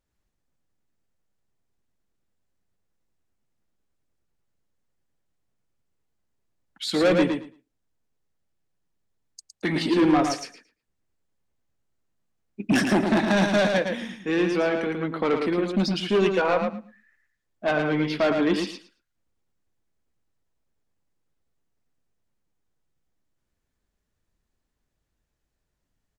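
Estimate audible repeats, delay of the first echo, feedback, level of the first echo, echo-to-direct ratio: 2, 0.111 s, 16%, -5.5 dB, -5.5 dB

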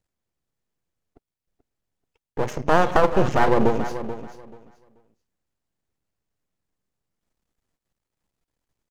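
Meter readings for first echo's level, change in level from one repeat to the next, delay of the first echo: -12.0 dB, -14.0 dB, 0.434 s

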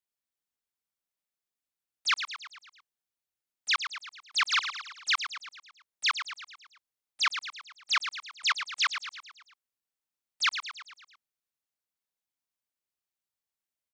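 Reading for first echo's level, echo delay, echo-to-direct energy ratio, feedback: -9.0 dB, 0.111 s, -7.5 dB, 55%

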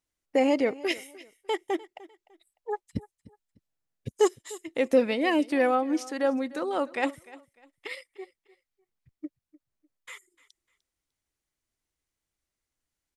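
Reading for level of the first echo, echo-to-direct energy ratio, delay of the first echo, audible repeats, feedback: -20.0 dB, -19.5 dB, 0.3 s, 2, 29%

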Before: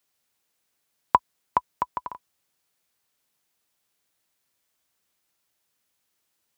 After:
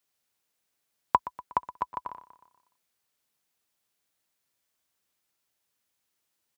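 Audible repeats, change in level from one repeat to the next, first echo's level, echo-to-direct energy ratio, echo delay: 4, -5.5 dB, -16.0 dB, -14.5 dB, 0.121 s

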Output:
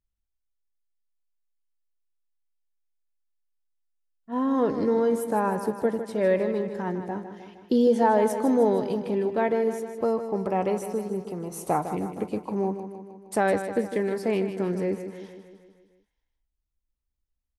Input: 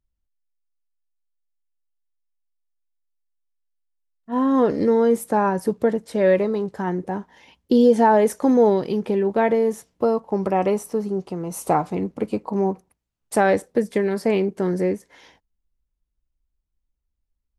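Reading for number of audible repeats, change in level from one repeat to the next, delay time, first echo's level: 6, -4.5 dB, 0.155 s, -10.0 dB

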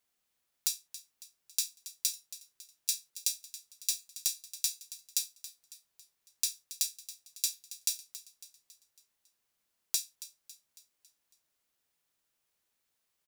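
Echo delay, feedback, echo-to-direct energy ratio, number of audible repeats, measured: 0.276 s, 50%, -13.5 dB, 4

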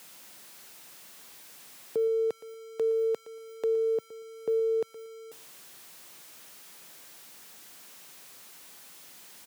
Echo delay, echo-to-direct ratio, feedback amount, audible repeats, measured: 0.117 s, -17.0 dB, 23%, 2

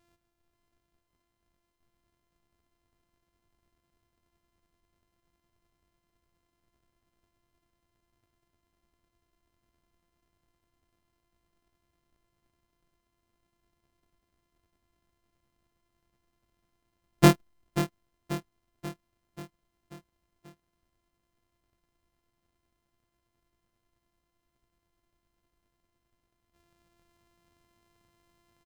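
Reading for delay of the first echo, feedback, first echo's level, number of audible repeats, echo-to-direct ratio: 0.536 s, 56%, -11.0 dB, 5, -9.5 dB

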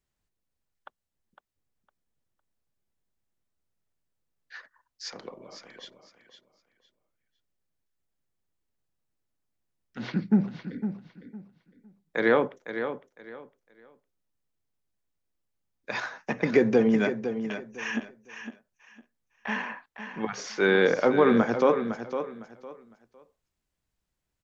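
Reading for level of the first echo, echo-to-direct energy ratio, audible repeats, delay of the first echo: -9.5 dB, -9.0 dB, 3, 0.507 s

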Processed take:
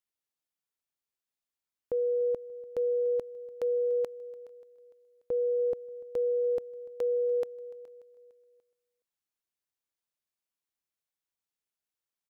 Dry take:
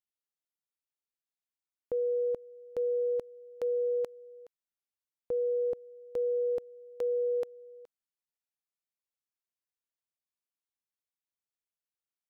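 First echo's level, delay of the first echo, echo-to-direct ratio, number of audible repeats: -22.0 dB, 0.292 s, -20.5 dB, 3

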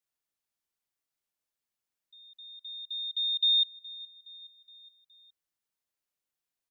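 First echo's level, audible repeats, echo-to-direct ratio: -20.5 dB, 3, -19.0 dB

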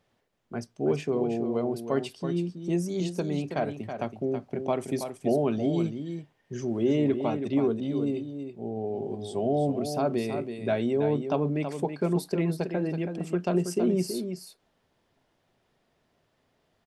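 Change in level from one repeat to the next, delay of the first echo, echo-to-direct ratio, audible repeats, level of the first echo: no steady repeat, 0.326 s, -8.0 dB, 1, -8.0 dB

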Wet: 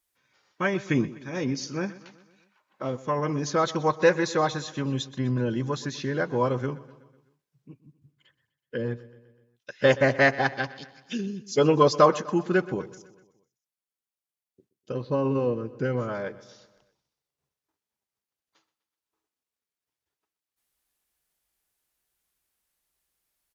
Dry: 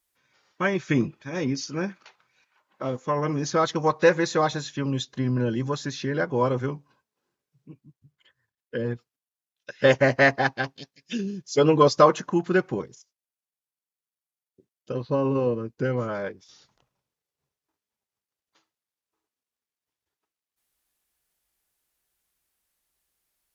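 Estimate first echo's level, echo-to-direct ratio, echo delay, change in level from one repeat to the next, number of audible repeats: -18.5 dB, -17.0 dB, 0.125 s, -5.0 dB, 4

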